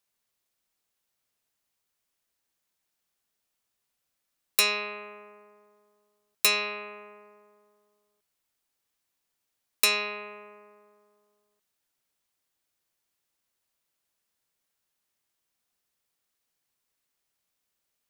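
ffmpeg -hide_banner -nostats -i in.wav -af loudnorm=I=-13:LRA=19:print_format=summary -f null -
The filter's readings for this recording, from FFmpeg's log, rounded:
Input Integrated:    -26.1 LUFS
Input True Peak:      -6.4 dBTP
Input LRA:             3.3 LU
Input Threshold:     -39.8 LUFS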